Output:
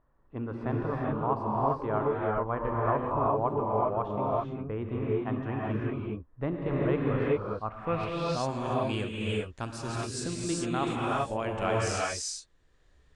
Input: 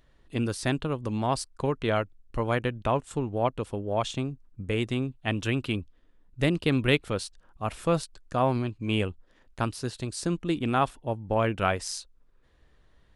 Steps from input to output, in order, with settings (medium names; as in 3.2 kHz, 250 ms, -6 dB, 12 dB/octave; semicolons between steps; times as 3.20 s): gated-style reverb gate 430 ms rising, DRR -4.5 dB; low-pass sweep 1.1 kHz -> 7.6 kHz, 7.66–8.51 s; trim -8 dB